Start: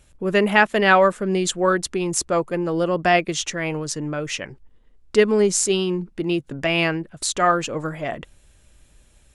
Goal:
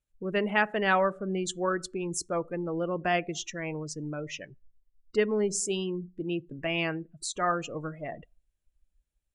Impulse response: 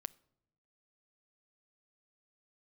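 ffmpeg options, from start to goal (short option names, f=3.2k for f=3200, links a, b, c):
-filter_complex "[1:a]atrim=start_sample=2205,afade=t=out:st=0.38:d=0.01,atrim=end_sample=17199,asetrate=48510,aresample=44100[a];[0:a][a]afir=irnorm=-1:irlink=0,afftdn=nr=23:nf=-35,volume=-5dB"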